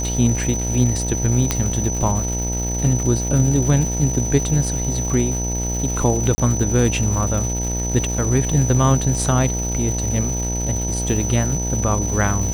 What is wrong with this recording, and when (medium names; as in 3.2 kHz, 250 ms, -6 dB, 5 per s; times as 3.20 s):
buzz 60 Hz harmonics 16 -24 dBFS
crackle 490 per s -27 dBFS
whine 6 kHz -25 dBFS
1.51 s: pop -3 dBFS
6.35–6.38 s: dropout 30 ms